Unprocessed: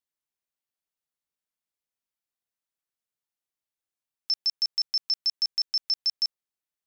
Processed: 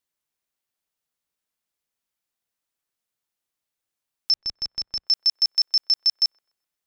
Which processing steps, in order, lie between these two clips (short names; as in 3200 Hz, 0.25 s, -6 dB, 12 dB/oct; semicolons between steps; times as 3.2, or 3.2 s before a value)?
4.34–5.07 RIAA curve playback; on a send: band-limited delay 0.128 s, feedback 32%, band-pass 890 Hz, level -23.5 dB; on the sum: gain +6 dB